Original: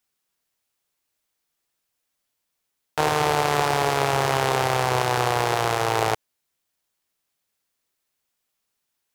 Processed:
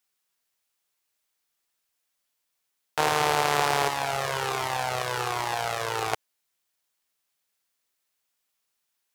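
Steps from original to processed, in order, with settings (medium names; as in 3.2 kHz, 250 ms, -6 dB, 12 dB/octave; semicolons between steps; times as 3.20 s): bass shelf 500 Hz -7.5 dB; 3.88–6.13 s: Shepard-style flanger falling 1.3 Hz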